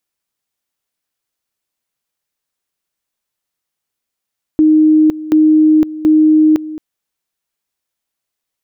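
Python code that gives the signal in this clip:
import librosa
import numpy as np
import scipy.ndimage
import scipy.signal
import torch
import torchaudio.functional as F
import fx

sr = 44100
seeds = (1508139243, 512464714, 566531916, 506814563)

y = fx.two_level_tone(sr, hz=310.0, level_db=-5.5, drop_db=16.5, high_s=0.51, low_s=0.22, rounds=3)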